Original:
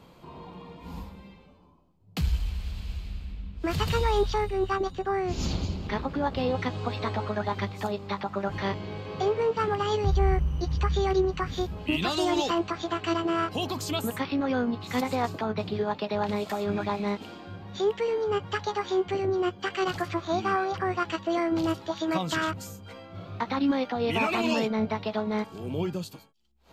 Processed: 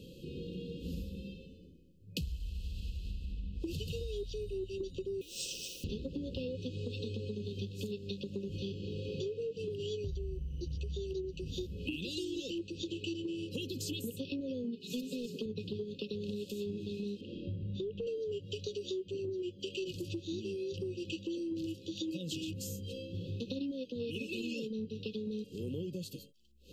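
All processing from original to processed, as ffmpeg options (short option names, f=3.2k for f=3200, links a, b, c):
-filter_complex "[0:a]asettb=1/sr,asplit=3[a][b][c];[a]atrim=end=5.214[d];[b]atrim=start=5.21:end=5.84,asetpts=PTS-STARTPTS,afade=t=in:d=0.004:c=qsin,afade=t=out:st=0.626:d=0.004:c=qsin,highshelf=f=7.9k:g=10.5,aeval=exprs='val(0)*sin(2*PI*1400*n/s)':c=same,acrusher=bits=9:dc=4:mix=0:aa=0.000001[e];[c]atrim=start=5.836[f];[d][e]acrossfade=d=0.004:c1=hsin:c2=qsin[g];[g][f]acrossfade=d=0.004:c1=qsin:c2=hsin,asettb=1/sr,asplit=3[h][i][j];[h]atrim=end=14.644[k];[i]atrim=start=14.64:end=15.46,asetpts=PTS-STARTPTS,afade=t=in:d=0.004:c=qsin,afade=t=out:st=0.816:d=0.004:c=qsin,highpass=150,volume=20.5dB,asoftclip=hard,volume=-20.5dB,aecho=1:1:4.7:0.86,atrim=end_sample=36162[l];[j]atrim=start=15.456[m];[k][l]acrossfade=d=0.004:c1=hsin:c2=qsin[n];[n][m]acrossfade=d=0.004:c1=qsin:c2=hsin,asettb=1/sr,asplit=3[o][p][q];[o]atrim=end=17.214[r];[p]atrim=start=17.21:end=18.07,asetpts=PTS-STARTPTS,afade=t=in:d=0.004:c=qsin,afade=t=out:st=0.856:d=0.004:c=qsin,lowpass=2.5k,asubboost=boost=11:cutoff=240,acompressor=threshold=-27dB:ratio=4:attack=3.2:release=140:knee=1:detection=peak[s];[q]atrim=start=18.066[t];[r][s]acrossfade=d=0.004:c1=hsin:c2=qsin[u];[u][t]acrossfade=d=0.004:c1=qsin:c2=hsin,afftfilt=real='re*(1-between(b*sr/4096,560,2500))':imag='im*(1-between(b*sr/4096,560,2500))':win_size=4096:overlap=0.75,acompressor=threshold=-39dB:ratio=12,volume=3.5dB"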